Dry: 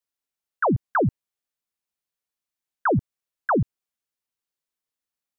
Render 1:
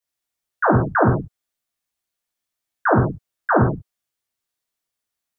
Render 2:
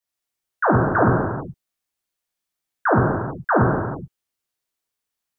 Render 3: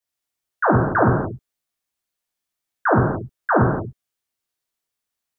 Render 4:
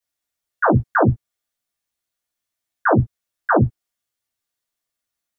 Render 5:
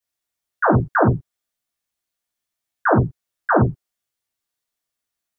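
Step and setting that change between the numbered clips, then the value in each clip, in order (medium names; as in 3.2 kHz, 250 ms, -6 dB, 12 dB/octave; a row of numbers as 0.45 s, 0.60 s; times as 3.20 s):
gated-style reverb, gate: 200 ms, 460 ms, 310 ms, 80 ms, 130 ms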